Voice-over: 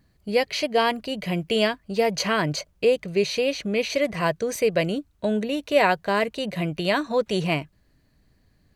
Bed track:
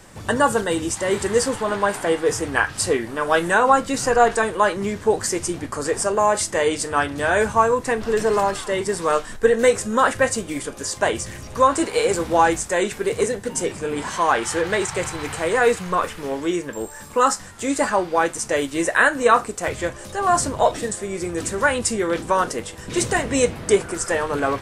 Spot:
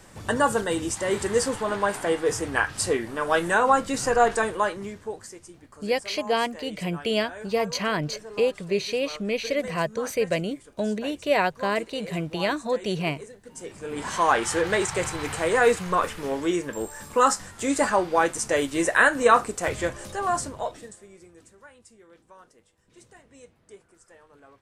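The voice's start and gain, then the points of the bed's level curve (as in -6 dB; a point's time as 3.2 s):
5.55 s, -3.0 dB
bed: 4.51 s -4 dB
5.42 s -21.5 dB
13.38 s -21.5 dB
14.13 s -2 dB
20.03 s -2 dB
21.67 s -31.5 dB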